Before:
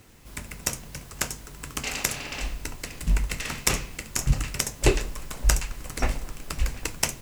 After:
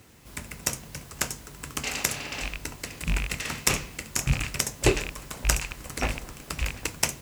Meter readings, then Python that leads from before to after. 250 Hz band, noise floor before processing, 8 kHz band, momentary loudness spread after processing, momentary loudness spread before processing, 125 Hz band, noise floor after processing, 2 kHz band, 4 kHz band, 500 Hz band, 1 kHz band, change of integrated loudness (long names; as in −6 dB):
0.0 dB, −45 dBFS, 0.0 dB, 12 LU, 12 LU, −2.0 dB, −47 dBFS, +1.5 dB, +0.5 dB, 0.0 dB, 0.0 dB, −0.5 dB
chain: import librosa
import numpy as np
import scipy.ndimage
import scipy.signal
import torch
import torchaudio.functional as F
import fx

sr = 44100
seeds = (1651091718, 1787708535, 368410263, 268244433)

y = fx.rattle_buzz(x, sr, strikes_db=-29.0, level_db=-18.0)
y = scipy.signal.sosfilt(scipy.signal.butter(2, 57.0, 'highpass', fs=sr, output='sos'), y)